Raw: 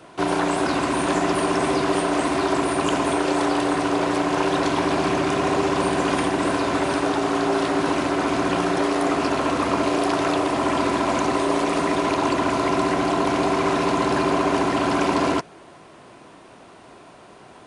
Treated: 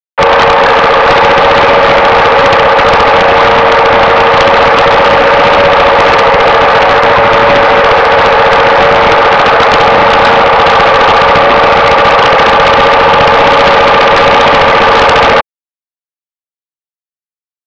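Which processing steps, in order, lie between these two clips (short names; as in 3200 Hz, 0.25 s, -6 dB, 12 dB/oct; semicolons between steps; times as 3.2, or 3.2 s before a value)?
bit-crush 5-bit; mistuned SSB +170 Hz 320–2300 Hz; sine folder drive 12 dB, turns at -8 dBFS; gain +6.5 dB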